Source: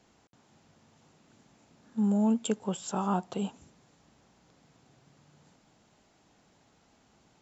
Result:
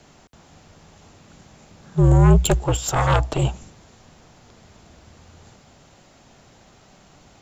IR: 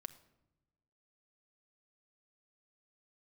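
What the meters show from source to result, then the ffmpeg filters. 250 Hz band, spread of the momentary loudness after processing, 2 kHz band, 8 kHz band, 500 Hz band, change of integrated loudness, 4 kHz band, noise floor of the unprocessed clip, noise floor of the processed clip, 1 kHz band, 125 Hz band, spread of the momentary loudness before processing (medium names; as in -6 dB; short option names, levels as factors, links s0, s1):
+4.5 dB, 10 LU, +19.5 dB, no reading, +12.0 dB, +12.0 dB, +13.5 dB, -66 dBFS, -52 dBFS, +11.0 dB, +21.0 dB, 10 LU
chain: -af "aeval=exprs='0.168*(cos(1*acos(clip(val(0)/0.168,-1,1)))-cos(1*PI/2))+0.075*(cos(4*acos(clip(val(0)/0.168,-1,1)))-cos(4*PI/2))+0.0299*(cos(5*acos(clip(val(0)/0.168,-1,1)))-cos(5*PI/2))':c=same,afreqshift=-63,volume=2.51"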